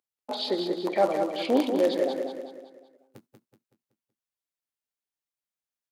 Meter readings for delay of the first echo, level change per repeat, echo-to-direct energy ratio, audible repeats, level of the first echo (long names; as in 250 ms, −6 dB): 188 ms, −7.0 dB, −5.0 dB, 5, −6.0 dB